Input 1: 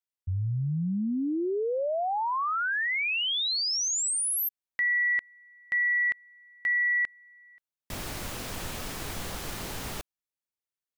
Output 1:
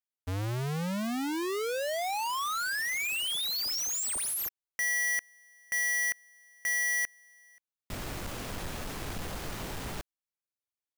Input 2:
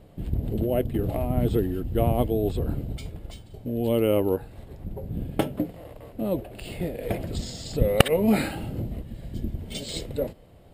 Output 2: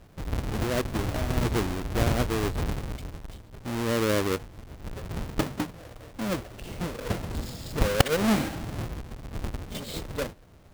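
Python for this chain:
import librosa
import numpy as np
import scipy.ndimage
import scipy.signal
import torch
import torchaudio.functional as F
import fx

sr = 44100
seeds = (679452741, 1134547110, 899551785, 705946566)

y = fx.halfwave_hold(x, sr)
y = y * librosa.db_to_amplitude(-6.5)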